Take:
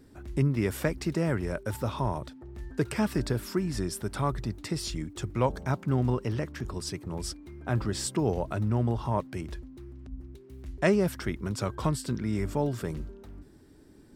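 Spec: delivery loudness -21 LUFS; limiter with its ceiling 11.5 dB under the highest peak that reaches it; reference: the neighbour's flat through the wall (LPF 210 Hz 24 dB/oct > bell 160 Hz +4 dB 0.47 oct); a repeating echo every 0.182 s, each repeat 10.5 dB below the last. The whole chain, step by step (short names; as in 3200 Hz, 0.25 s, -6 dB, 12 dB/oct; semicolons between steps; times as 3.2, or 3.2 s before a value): limiter -21.5 dBFS; LPF 210 Hz 24 dB/oct; bell 160 Hz +4 dB 0.47 oct; feedback echo 0.182 s, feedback 30%, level -10.5 dB; gain +14 dB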